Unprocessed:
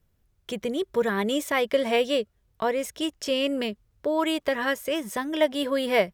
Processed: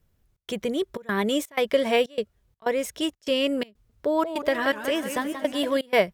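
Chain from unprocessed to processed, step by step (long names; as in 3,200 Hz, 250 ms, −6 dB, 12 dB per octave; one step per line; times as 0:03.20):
gate pattern "xxx.xxxx." 124 BPM −24 dB
0:03.71–0:05.77: feedback echo with a swinging delay time 184 ms, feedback 56%, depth 184 cents, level −9.5 dB
level +1.5 dB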